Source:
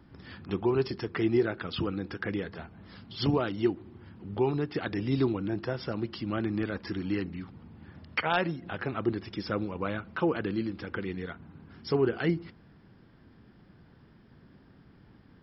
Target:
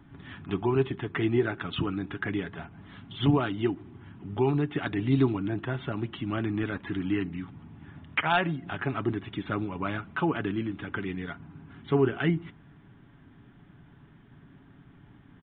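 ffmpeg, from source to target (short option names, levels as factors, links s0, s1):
-af "equalizer=f=500:w=5.5:g=-14,aecho=1:1:7.1:0.35,aresample=8000,aresample=44100,volume=1.33"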